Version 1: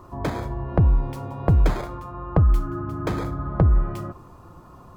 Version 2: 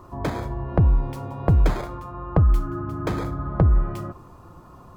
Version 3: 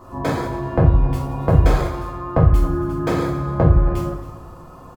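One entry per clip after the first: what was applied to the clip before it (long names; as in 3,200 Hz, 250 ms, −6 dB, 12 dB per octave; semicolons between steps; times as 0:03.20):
no processing that can be heard
single-tap delay 275 ms −18 dB; coupled-rooms reverb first 0.43 s, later 1.7 s, from −17 dB, DRR −5.5 dB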